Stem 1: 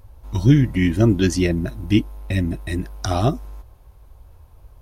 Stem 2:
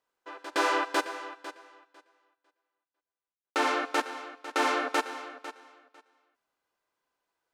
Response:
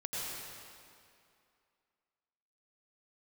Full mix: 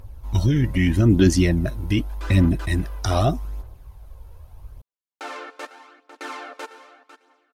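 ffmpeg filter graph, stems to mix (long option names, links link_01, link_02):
-filter_complex "[0:a]alimiter=limit=-11.5dB:level=0:latency=1:release=13,volume=1dB,asplit=2[link_01][link_02];[1:a]adelay=1650,volume=-8dB[link_03];[link_02]apad=whole_len=404881[link_04];[link_03][link_04]sidechaincompress=threshold=-21dB:ratio=8:attack=5:release=968[link_05];[link_01][link_05]amix=inputs=2:normalize=0,aphaser=in_gain=1:out_gain=1:delay=2.3:decay=0.4:speed=0.82:type=triangular"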